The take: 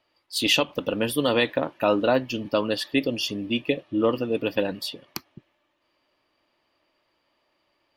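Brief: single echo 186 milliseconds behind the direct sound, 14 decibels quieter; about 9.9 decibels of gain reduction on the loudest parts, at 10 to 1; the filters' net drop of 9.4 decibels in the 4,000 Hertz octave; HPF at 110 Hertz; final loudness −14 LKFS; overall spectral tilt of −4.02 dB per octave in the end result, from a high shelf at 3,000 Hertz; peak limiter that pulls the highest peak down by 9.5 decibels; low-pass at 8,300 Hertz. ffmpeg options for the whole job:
ffmpeg -i in.wav -af "highpass=110,lowpass=8300,highshelf=frequency=3000:gain=-7,equalizer=frequency=4000:width_type=o:gain=-8,acompressor=threshold=-27dB:ratio=10,alimiter=level_in=1.5dB:limit=-24dB:level=0:latency=1,volume=-1.5dB,aecho=1:1:186:0.2,volume=22.5dB" out.wav

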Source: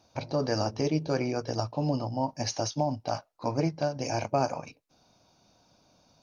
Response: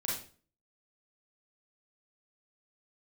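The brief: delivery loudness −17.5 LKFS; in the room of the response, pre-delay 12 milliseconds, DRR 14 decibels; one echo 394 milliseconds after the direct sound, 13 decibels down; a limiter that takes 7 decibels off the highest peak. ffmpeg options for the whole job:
-filter_complex "[0:a]alimiter=limit=-20dB:level=0:latency=1,aecho=1:1:394:0.224,asplit=2[link_01][link_02];[1:a]atrim=start_sample=2205,adelay=12[link_03];[link_02][link_03]afir=irnorm=-1:irlink=0,volume=-18dB[link_04];[link_01][link_04]amix=inputs=2:normalize=0,volume=14.5dB"

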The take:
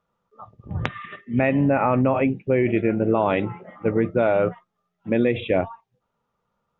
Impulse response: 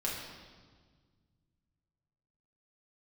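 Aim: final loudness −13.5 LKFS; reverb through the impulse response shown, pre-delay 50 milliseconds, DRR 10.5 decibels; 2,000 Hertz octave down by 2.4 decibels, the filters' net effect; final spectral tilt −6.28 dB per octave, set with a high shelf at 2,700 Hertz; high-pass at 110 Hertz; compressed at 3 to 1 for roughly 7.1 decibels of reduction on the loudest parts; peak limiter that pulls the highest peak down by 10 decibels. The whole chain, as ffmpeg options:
-filter_complex "[0:a]highpass=110,equalizer=frequency=2000:width_type=o:gain=-7,highshelf=frequency=2700:gain=8.5,acompressor=threshold=-25dB:ratio=3,alimiter=limit=-19dB:level=0:latency=1,asplit=2[link_01][link_02];[1:a]atrim=start_sample=2205,adelay=50[link_03];[link_02][link_03]afir=irnorm=-1:irlink=0,volume=-15dB[link_04];[link_01][link_04]amix=inputs=2:normalize=0,volume=16.5dB"

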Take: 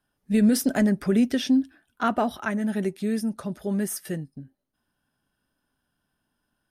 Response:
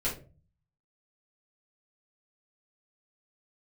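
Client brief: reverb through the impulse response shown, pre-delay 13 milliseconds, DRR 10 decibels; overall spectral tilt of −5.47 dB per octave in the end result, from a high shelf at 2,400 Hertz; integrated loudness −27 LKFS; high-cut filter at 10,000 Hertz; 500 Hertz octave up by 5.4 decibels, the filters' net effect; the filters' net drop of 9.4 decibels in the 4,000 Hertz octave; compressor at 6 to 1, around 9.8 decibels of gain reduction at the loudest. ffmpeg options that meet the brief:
-filter_complex "[0:a]lowpass=10000,equalizer=frequency=500:width_type=o:gain=7.5,highshelf=frequency=2400:gain=-6,equalizer=frequency=4000:width_type=o:gain=-7,acompressor=threshold=-25dB:ratio=6,asplit=2[link_01][link_02];[1:a]atrim=start_sample=2205,adelay=13[link_03];[link_02][link_03]afir=irnorm=-1:irlink=0,volume=-16.5dB[link_04];[link_01][link_04]amix=inputs=2:normalize=0,volume=2.5dB"

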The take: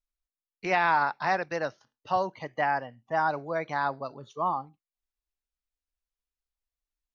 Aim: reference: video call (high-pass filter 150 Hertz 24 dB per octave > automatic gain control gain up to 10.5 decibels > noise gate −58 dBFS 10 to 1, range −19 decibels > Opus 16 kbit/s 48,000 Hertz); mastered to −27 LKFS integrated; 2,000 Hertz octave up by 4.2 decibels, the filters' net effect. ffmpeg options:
ffmpeg -i in.wav -af "highpass=frequency=150:width=0.5412,highpass=frequency=150:width=1.3066,equalizer=frequency=2000:width_type=o:gain=5.5,dynaudnorm=maxgain=10.5dB,agate=range=-19dB:threshold=-58dB:ratio=10,volume=0.5dB" -ar 48000 -c:a libopus -b:a 16k out.opus

